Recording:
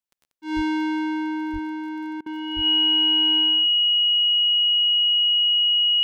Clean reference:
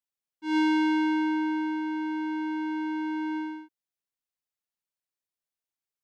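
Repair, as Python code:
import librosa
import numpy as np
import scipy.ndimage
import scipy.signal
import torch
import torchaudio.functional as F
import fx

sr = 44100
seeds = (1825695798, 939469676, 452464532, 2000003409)

y = fx.fix_declick_ar(x, sr, threshold=6.5)
y = fx.notch(y, sr, hz=2900.0, q=30.0)
y = fx.highpass(y, sr, hz=140.0, slope=24, at=(0.55, 0.67), fade=0.02)
y = fx.highpass(y, sr, hz=140.0, slope=24, at=(1.52, 1.64), fade=0.02)
y = fx.highpass(y, sr, hz=140.0, slope=24, at=(2.55, 2.67), fade=0.02)
y = fx.fix_interpolate(y, sr, at_s=(2.21,), length_ms=50.0)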